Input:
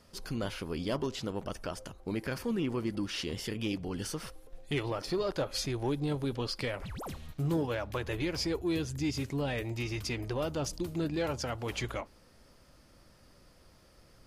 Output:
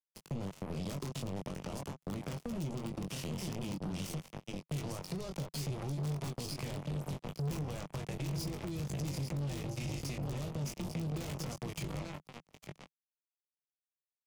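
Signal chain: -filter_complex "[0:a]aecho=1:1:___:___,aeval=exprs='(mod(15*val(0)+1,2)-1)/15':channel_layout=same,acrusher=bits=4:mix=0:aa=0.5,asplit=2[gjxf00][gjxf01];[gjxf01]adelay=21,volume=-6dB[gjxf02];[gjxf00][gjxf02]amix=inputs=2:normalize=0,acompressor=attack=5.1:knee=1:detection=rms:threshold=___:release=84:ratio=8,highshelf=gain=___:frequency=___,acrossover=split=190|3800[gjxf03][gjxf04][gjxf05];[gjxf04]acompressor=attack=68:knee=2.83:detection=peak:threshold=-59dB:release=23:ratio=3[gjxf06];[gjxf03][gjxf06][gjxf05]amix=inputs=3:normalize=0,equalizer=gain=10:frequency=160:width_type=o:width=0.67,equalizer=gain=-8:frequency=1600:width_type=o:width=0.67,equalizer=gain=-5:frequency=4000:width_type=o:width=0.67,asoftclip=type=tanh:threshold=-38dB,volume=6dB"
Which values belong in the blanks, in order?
849, 0.473, -35dB, -8.5, 9300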